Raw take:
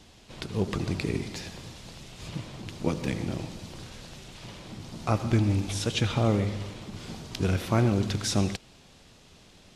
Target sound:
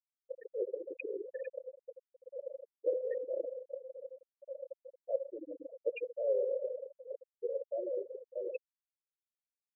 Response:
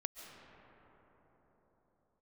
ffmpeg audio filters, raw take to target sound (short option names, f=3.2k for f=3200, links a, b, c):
-filter_complex "[0:a]asplit=2[a][b];[b]highpass=f=720:p=1,volume=11dB,asoftclip=type=tanh:threshold=-11.5dB[c];[a][c]amix=inputs=2:normalize=0,lowpass=f=1.5k:p=1,volume=-6dB,areverse,acompressor=threshold=-34dB:ratio=8,areverse,asplit=3[d][e][f];[d]bandpass=f=530:t=q:w=8,volume=0dB[g];[e]bandpass=f=1.84k:t=q:w=8,volume=-6dB[h];[f]bandpass=f=2.48k:t=q:w=8,volume=-9dB[i];[g][h][i]amix=inputs=3:normalize=0,afftfilt=real='re*gte(hypot(re,im),0.0141)':imag='im*gte(hypot(re,im),0.0141)':win_size=1024:overlap=0.75,volume=14.5dB"